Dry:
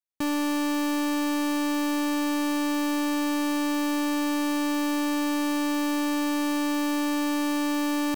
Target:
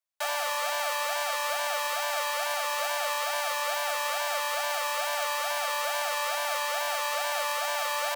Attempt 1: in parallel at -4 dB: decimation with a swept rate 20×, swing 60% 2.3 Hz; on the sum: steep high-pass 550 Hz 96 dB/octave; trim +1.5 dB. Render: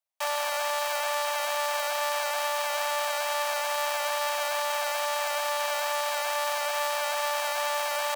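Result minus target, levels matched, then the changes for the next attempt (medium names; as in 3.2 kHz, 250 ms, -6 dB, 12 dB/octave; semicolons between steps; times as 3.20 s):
decimation with a swept rate: distortion -9 dB
change: decimation with a swept rate 48×, swing 60% 2.3 Hz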